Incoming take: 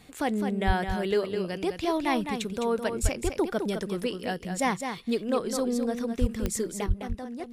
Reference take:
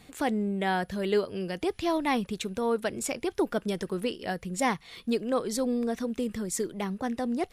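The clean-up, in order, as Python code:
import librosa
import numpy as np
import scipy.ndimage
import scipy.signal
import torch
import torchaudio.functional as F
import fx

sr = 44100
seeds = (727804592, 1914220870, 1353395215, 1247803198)

y = fx.fix_declick_ar(x, sr, threshold=10.0)
y = fx.fix_deplosive(y, sr, at_s=(0.66, 3.02, 6.2, 6.87))
y = fx.fix_echo_inverse(y, sr, delay_ms=209, level_db=-7.0)
y = fx.gain(y, sr, db=fx.steps((0.0, 0.0), (6.86, 7.5)))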